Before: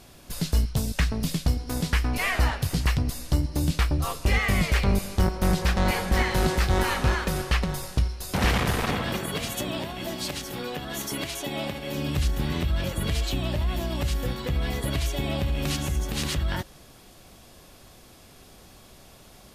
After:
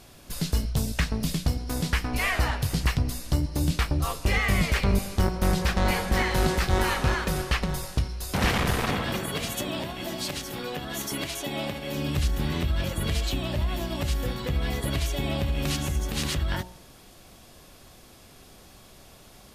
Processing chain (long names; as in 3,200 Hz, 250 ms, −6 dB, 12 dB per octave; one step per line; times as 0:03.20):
hum removal 60.46 Hz, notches 16